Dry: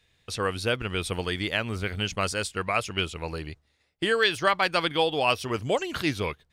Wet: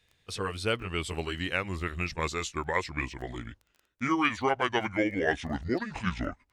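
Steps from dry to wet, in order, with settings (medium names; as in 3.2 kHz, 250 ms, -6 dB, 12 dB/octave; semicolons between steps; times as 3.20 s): pitch bend over the whole clip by -9.5 st starting unshifted; crackle 13 per s -40 dBFS; trim -2.5 dB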